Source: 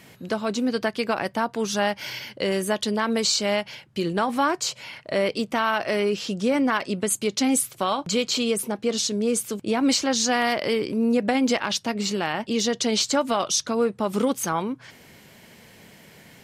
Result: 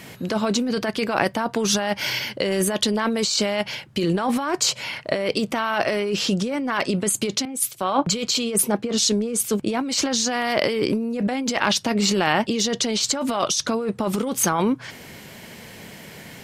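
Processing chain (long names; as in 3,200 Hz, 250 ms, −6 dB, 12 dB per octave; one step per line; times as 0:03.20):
compressor whose output falls as the input rises −27 dBFS, ratio −1
0:07.45–0:09.63: multiband upward and downward expander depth 100%
level +5 dB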